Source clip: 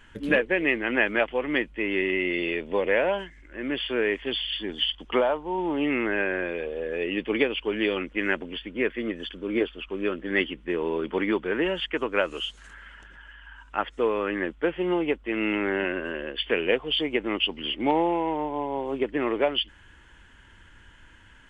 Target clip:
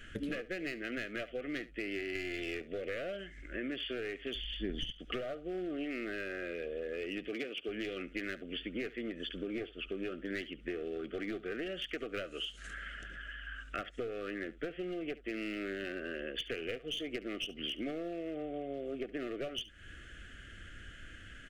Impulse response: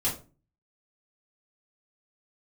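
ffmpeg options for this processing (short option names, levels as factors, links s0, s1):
-filter_complex "[0:a]asettb=1/sr,asplit=3[s0][s1][s2];[s0]atrim=end=2.154[s3];[s1]atrim=start=2.15:end=2.62,asetpts=PTS-STARTPTS,afade=t=in:d=0.004:c=qsin,afade=t=out:st=0.466:d=0.004:c=qsin,acontrast=79[s4];[s2]atrim=start=2.616[s5];[s3][s4]acrossfade=d=0.004:c1=hsin:c2=qsin[s6];[s6][s5]acrossfade=d=0.004:c1=qsin:c2=hsin,aeval=exprs='clip(val(0),-1,0.0668)':c=same,asuperstop=centerf=930:order=20:qfactor=2.3,equalizer=f=960:t=o:w=0.77:g=-3,acompressor=threshold=0.0126:ratio=16,asettb=1/sr,asplit=3[s7][s8][s9];[s7]atrim=end=4.354[s10];[s8]atrim=start=4.35:end=4.92,asetpts=PTS-STARTPTS,afade=t=in:d=0.004:c=qsin,afade=t=out:st=0.566:d=0.004:c=qsin,aemphasis=mode=reproduction:type=bsi[s11];[s9]atrim=start=4.916[s12];[s10][s11]acrossfade=d=0.004:c1=hsin:c2=qsin[s13];[s13][s12]acrossfade=d=0.004:c1=qsin:c2=hsin,asettb=1/sr,asplit=3[s14][s15][s16];[s14]atrim=end=7.284[s17];[s15]atrim=start=7.28:end=7.69,asetpts=PTS-STARTPTS,afade=t=in:d=0.004:c=qsin,afade=t=out:st=0.406:d=0.004:c=qsin,highpass=170[s18];[s16]atrim=start=7.686[s19];[s17][s18]acrossfade=d=0.004:c1=hsin:c2=qsin[s20];[s20][s19]acrossfade=d=0.004:c1=qsin:c2=hsin,aecho=1:1:71:0.126,volume=1.33"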